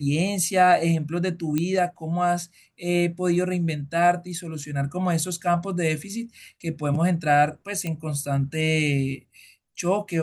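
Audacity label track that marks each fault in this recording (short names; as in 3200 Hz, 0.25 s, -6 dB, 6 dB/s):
1.580000	1.580000	pop -12 dBFS
7.870000	7.870000	pop -16 dBFS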